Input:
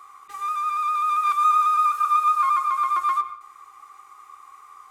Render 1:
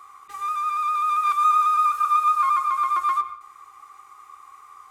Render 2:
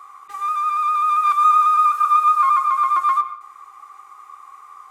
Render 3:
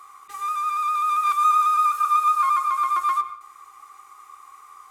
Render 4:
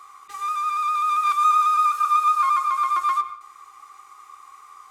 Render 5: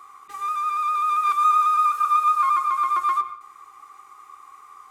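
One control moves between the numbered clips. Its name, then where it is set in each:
bell, frequency: 83, 940, 13000, 5200, 250 Hz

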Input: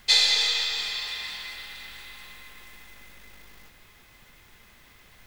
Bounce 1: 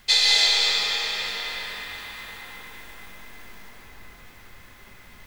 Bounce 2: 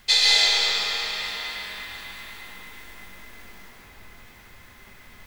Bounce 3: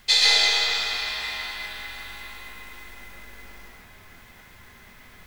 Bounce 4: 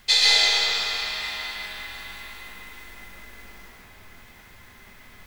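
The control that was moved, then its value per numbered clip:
plate-style reverb, RT60: 5.2, 2.5, 0.52, 1.1 s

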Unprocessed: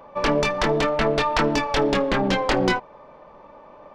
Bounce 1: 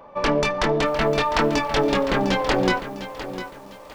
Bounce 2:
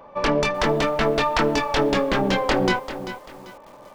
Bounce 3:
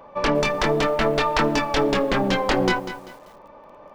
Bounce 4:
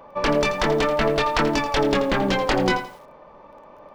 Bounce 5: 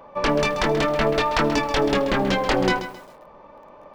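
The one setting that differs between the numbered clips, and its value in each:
lo-fi delay, time: 703, 391, 195, 84, 133 ms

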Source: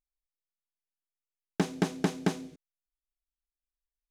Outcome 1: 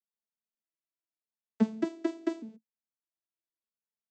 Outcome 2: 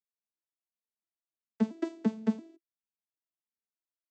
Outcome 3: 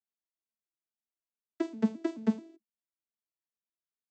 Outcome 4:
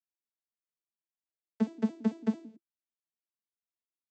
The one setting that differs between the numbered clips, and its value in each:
arpeggiated vocoder, a note every: 0.604, 0.34, 0.216, 0.111 s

